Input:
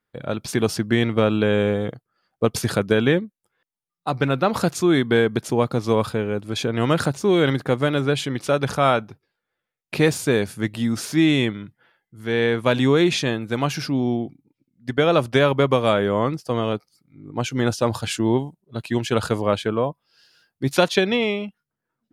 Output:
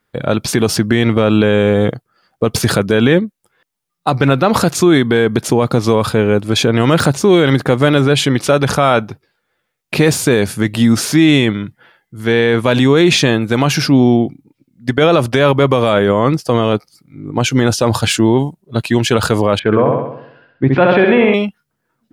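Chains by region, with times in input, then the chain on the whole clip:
19.59–21.34 s: low-pass 2.3 kHz 24 dB/octave + flutter echo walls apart 11.3 m, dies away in 0.75 s
whole clip: de-esser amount 50%; loudness maximiser +13.5 dB; trim -1 dB

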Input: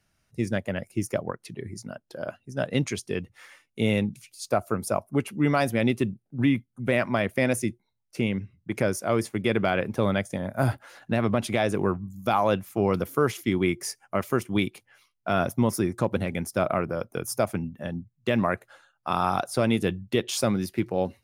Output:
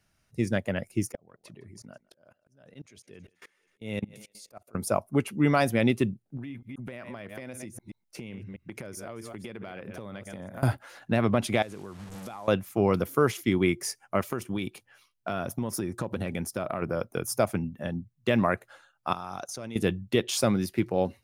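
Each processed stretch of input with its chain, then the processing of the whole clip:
1.12–4.75 s: thinning echo 160 ms, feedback 51%, high-pass 280 Hz, level -20 dB + level held to a coarse grid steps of 24 dB + slow attack 397 ms
6.37–10.63 s: chunks repeated in reverse 129 ms, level -12.5 dB + compression 16:1, threshold -35 dBFS
11.62–12.48 s: one-bit delta coder 64 kbps, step -34 dBFS + compression, threshold -38 dBFS
14.23–16.82 s: band-stop 2.1 kHz, Q 13 + compression, threshold -26 dBFS
19.13–19.76 s: peaking EQ 6.2 kHz +15 dB 0.27 oct + level held to a coarse grid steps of 19 dB
whole clip: none

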